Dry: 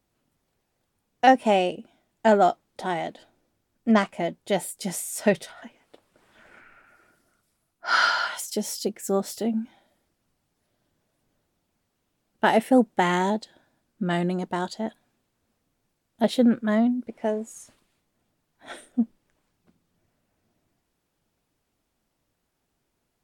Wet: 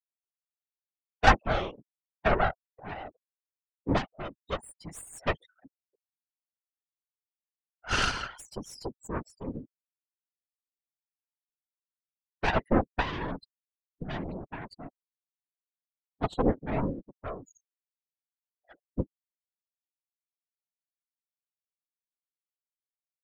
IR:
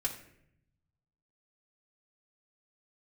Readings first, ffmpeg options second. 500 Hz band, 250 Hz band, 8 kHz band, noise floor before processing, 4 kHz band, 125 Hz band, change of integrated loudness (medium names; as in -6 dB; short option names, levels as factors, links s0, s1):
-9.0 dB, -10.5 dB, -10.5 dB, -77 dBFS, -5.0 dB, -1.0 dB, -6.5 dB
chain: -filter_complex "[0:a]asplit=2[s0][s1];[1:a]atrim=start_sample=2205,atrim=end_sample=3528,asetrate=66150,aresample=44100[s2];[s1][s2]afir=irnorm=-1:irlink=0,volume=0.0891[s3];[s0][s3]amix=inputs=2:normalize=0,afftfilt=real='re*gte(hypot(re,im),0.0355)':imag='im*gte(hypot(re,im),0.0355)':win_size=1024:overlap=0.75,aeval=exprs='0.668*(cos(1*acos(clip(val(0)/0.668,-1,1)))-cos(1*PI/2))+0.106*(cos(2*acos(clip(val(0)/0.668,-1,1)))-cos(2*PI/2))+0.299*(cos(4*acos(clip(val(0)/0.668,-1,1)))-cos(4*PI/2))+0.0473*(cos(7*acos(clip(val(0)/0.668,-1,1)))-cos(7*PI/2))':c=same,afftfilt=real='hypot(re,im)*cos(2*PI*random(0))':imag='hypot(re,im)*sin(2*PI*random(1))':win_size=512:overlap=0.75"